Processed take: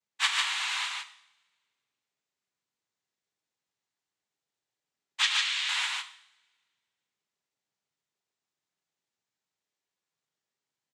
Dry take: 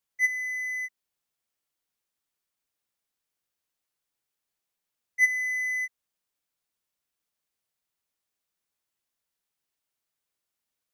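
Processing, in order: half-waves squared off; noise vocoder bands 6; 5.22–5.69 band-pass 3700 Hz, Q 0.89; on a send: loudspeakers at several distances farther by 36 m -11 dB, 51 m -3 dB; on the sum: two-slope reverb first 0.64 s, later 1.8 s, from -21 dB, DRR 9 dB; gain -6 dB

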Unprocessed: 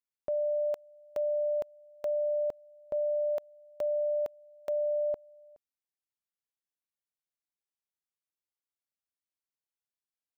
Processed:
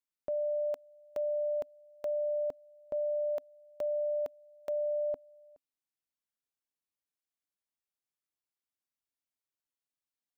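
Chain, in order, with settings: bell 270 Hz +6 dB 0.27 oct; gain -2.5 dB

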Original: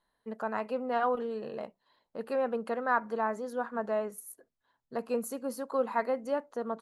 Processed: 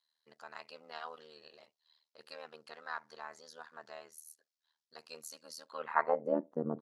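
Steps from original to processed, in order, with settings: band-pass sweep 4900 Hz -> 290 Hz, 5.62–6.4; AM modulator 78 Hz, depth 95%; gain +10.5 dB

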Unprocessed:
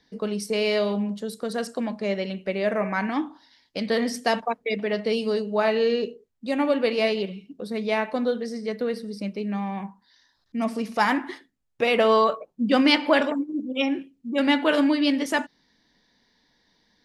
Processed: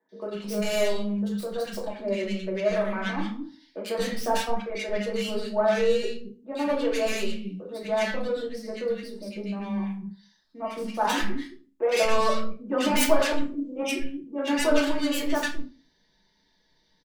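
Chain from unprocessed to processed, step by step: tracing distortion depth 0.33 ms; three bands offset in time mids, highs, lows 90/220 ms, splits 270/1400 Hz; reverb RT60 0.35 s, pre-delay 3 ms, DRR -3.5 dB; gain -6.5 dB

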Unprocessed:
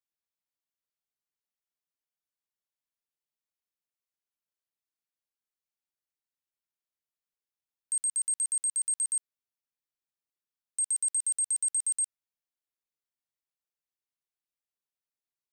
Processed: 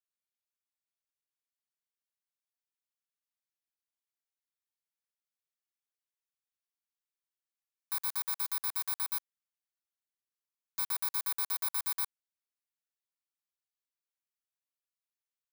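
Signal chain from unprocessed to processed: FFT order left unsorted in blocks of 256 samples; HPF 910 Hz 24 dB/oct; gain -4.5 dB

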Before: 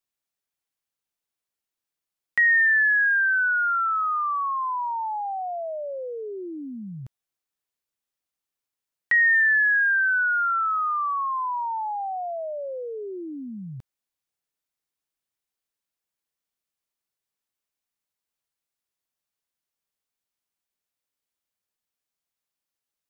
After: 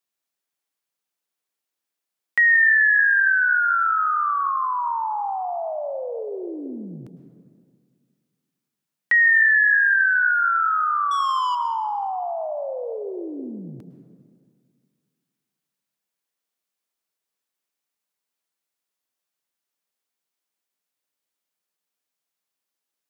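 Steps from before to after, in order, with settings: HPF 180 Hz 12 dB/oct; 11.11–11.55 sample leveller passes 2; plate-style reverb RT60 2.1 s, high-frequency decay 0.5×, pre-delay 95 ms, DRR 8.5 dB; gain +2.5 dB

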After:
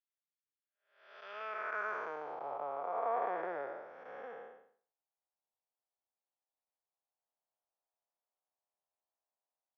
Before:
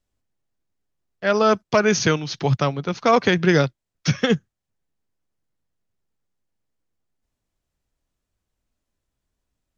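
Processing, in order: time blur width 0.395 s; three-band isolator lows -22 dB, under 390 Hz, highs -19 dB, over 2100 Hz; band-pass sweep 3600 Hz -> 790 Hz, 1.21–2.19; gain -1.5 dB

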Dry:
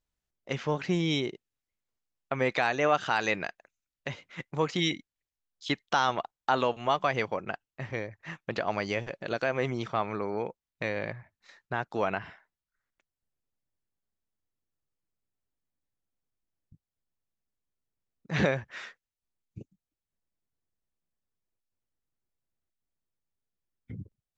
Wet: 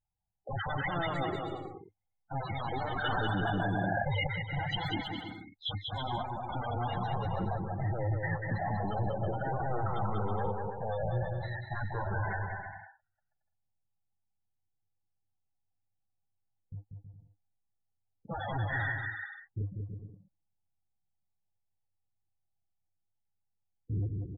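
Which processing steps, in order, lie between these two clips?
11.8–12.27 minimum comb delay 2 ms; wrapped overs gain 28.5 dB; thirty-one-band EQ 100 Hz +11 dB, 250 Hz -5 dB, 400 Hz -3 dB, 800 Hz +9 dB, 2500 Hz -10 dB, 5000 Hz -7 dB; transient shaper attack -8 dB, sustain +7 dB; limiter -31 dBFS, peak gain reduction 9 dB; sample leveller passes 3; loudest bins only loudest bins 16; resonant high shelf 4500 Hz -11.5 dB, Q 3; bouncing-ball echo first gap 0.19 s, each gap 0.7×, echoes 5; 3.04–4.27 fast leveller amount 100%; gain +2.5 dB

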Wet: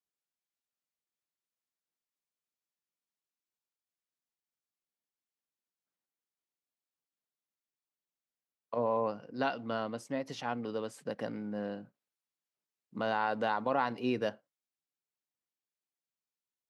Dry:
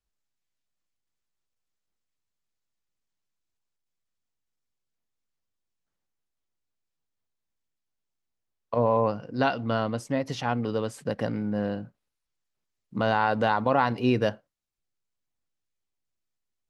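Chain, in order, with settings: HPF 190 Hz 12 dB/oct; gain -7.5 dB

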